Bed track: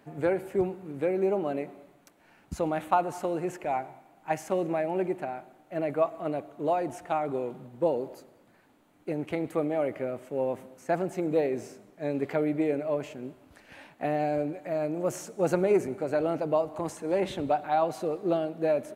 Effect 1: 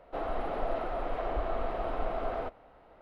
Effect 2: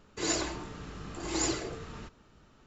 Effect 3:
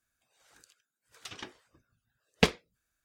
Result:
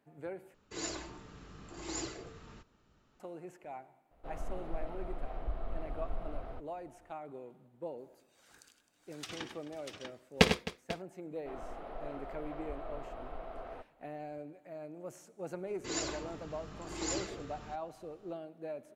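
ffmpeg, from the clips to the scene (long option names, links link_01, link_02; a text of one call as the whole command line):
ffmpeg -i bed.wav -i cue0.wav -i cue1.wav -i cue2.wav -filter_complex "[2:a]asplit=2[link_01][link_02];[1:a]asplit=2[link_03][link_04];[0:a]volume=-16dB[link_05];[link_03]bass=frequency=250:gain=12,treble=frequency=4000:gain=5[link_06];[3:a]aecho=1:1:57|86|100|261|493|642:0.178|0.133|0.376|0.141|0.133|0.596[link_07];[link_05]asplit=2[link_08][link_09];[link_08]atrim=end=0.544[link_10];[link_01]atrim=end=2.66,asetpts=PTS-STARTPTS,volume=-9dB[link_11];[link_09]atrim=start=3.196[link_12];[link_06]atrim=end=3.01,asetpts=PTS-STARTPTS,volume=-14dB,afade=type=in:duration=0.004:curve=hsin,afade=type=out:start_time=3.006:duration=0.004:curve=hsin,adelay=4110[link_13];[link_07]atrim=end=3.04,asetpts=PTS-STARTPTS,volume=-0.5dB,afade=type=in:duration=0.004:curve=hsin,afade=type=out:start_time=3.036:duration=0.004:curve=hsin,adelay=7980[link_14];[link_04]atrim=end=3.01,asetpts=PTS-STARTPTS,volume=-11.5dB,afade=type=in:duration=0.004:curve=hsin,afade=type=out:start_time=3.006:duration=0.004:curve=hsin,adelay=11330[link_15];[link_02]atrim=end=2.66,asetpts=PTS-STARTPTS,volume=-6dB,afade=type=in:duration=0.004:curve=hsin,afade=type=out:start_time=2.656:duration=0.004:curve=hsin,adelay=15670[link_16];[link_10][link_11]acrossfade=duration=0.004:curve1=hsin:curve2=hsin[link_17];[link_17][link_12]acrossfade=duration=0.004:curve1=hsin:curve2=hsin[link_18];[link_18][link_13][link_14][link_15][link_16]amix=inputs=5:normalize=0" out.wav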